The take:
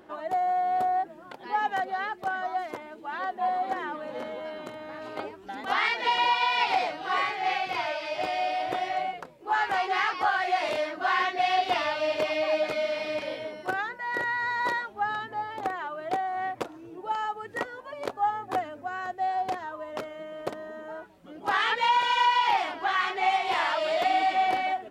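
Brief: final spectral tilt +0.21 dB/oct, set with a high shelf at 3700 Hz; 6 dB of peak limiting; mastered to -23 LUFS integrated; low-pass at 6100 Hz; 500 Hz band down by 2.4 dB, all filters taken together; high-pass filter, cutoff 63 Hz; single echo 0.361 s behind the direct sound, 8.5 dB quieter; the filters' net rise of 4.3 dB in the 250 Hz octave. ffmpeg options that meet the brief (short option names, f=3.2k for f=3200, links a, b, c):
-af "highpass=63,lowpass=6.1k,equalizer=f=250:t=o:g=8.5,equalizer=f=500:t=o:g=-5.5,highshelf=f=3.7k:g=4.5,alimiter=limit=-18dB:level=0:latency=1,aecho=1:1:361:0.376,volume=6dB"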